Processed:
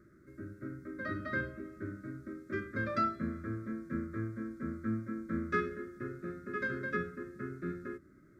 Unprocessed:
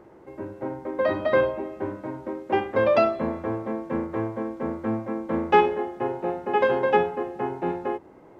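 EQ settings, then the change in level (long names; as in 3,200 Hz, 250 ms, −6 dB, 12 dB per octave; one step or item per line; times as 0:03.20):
elliptic band-stop filter 560–1,300 Hz, stop band 60 dB
phaser with its sweep stopped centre 1,200 Hz, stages 4
−3.0 dB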